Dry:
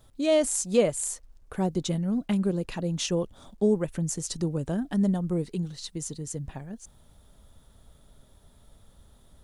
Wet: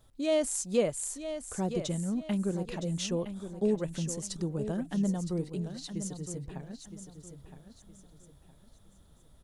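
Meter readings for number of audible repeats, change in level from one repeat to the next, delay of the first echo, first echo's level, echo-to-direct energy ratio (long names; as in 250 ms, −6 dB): 3, −10.0 dB, 965 ms, −10.0 dB, −9.5 dB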